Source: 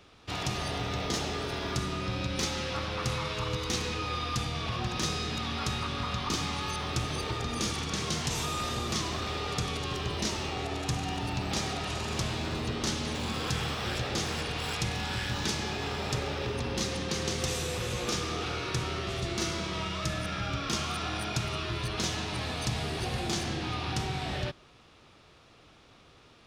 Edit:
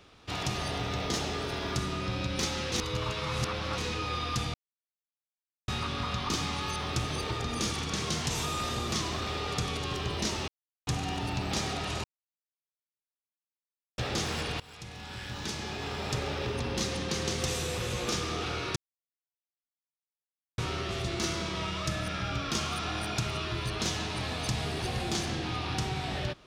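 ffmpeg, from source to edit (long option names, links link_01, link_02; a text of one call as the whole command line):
ffmpeg -i in.wav -filter_complex "[0:a]asplit=11[link_01][link_02][link_03][link_04][link_05][link_06][link_07][link_08][link_09][link_10][link_11];[link_01]atrim=end=2.722[link_12];[link_02]atrim=start=2.718:end=3.782,asetpts=PTS-STARTPTS,areverse[link_13];[link_03]atrim=start=3.778:end=4.54,asetpts=PTS-STARTPTS,afade=type=out:start_time=0.758:duration=0.004:curve=hsin[link_14];[link_04]atrim=start=4.54:end=5.68,asetpts=PTS-STARTPTS,volume=0[link_15];[link_05]atrim=start=5.68:end=10.48,asetpts=PTS-STARTPTS,afade=type=in:duration=0.004:curve=hsin,afade=type=out:start_time=4.796:duration=0.004:curve=hsin[link_16];[link_06]atrim=start=10.48:end=10.87,asetpts=PTS-STARTPTS,volume=0[link_17];[link_07]atrim=start=10.87:end=12.04,asetpts=PTS-STARTPTS,afade=type=in:duration=0.004:curve=hsin,afade=type=out:start_time=1.166:duration=0.004:curve=hsin[link_18];[link_08]atrim=start=12.04:end=13.98,asetpts=PTS-STARTPTS,volume=0[link_19];[link_09]atrim=start=13.98:end=14.6,asetpts=PTS-STARTPTS,afade=type=in:duration=0.004:curve=hsin,afade=type=out:start_time=0.616:duration=0.004:curve=hsin:silence=0.0944061[link_20];[link_10]atrim=start=14.6:end=18.76,asetpts=PTS-STARTPTS,afade=type=in:duration=1.7:silence=0.0944061,afade=type=out:start_time=4.156:duration=0.004:curve=hsin,apad=pad_dur=1.82[link_21];[link_11]atrim=start=18.76,asetpts=PTS-STARTPTS,afade=type=in:duration=0.004:curve=hsin[link_22];[link_12][link_13]acrossfade=duration=0.004:curve1=hsin:curve2=hsin[link_23];[link_14][link_15][link_16][link_17][link_18][link_19][link_20][link_21][link_22]concat=n=9:v=0:a=1[link_24];[link_23][link_24]acrossfade=duration=0.004:curve1=hsin:curve2=hsin" out.wav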